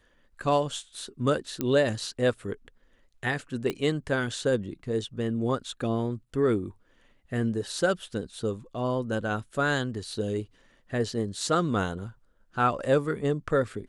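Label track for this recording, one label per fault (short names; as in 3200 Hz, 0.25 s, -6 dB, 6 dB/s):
1.610000	1.610000	pop -14 dBFS
3.700000	3.700000	pop -16 dBFS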